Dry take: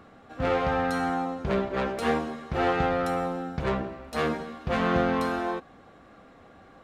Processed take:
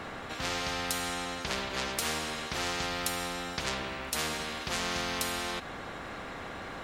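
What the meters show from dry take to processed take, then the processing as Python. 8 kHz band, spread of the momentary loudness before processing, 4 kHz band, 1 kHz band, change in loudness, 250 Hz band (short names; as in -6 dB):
+15.0 dB, 8 LU, +8.0 dB, -7.5 dB, -5.5 dB, -10.5 dB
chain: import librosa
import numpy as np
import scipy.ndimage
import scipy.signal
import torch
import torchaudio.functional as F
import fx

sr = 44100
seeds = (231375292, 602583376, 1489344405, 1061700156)

y = fx.spectral_comp(x, sr, ratio=4.0)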